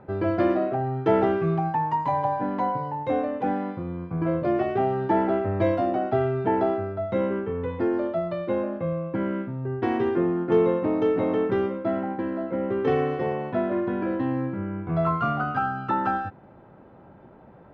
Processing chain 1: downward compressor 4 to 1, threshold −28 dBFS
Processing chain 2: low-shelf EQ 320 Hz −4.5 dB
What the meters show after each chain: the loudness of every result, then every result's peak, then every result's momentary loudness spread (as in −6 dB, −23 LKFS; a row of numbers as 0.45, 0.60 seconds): −31.5, −27.0 LKFS; −18.0, −11.5 dBFS; 3, 6 LU